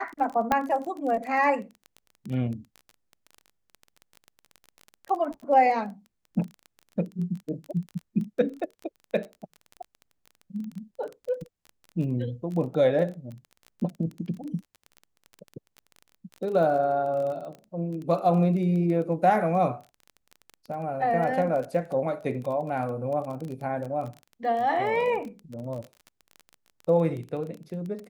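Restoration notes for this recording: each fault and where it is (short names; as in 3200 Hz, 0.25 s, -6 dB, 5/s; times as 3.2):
crackle 22/s -33 dBFS
0.52 pop -10 dBFS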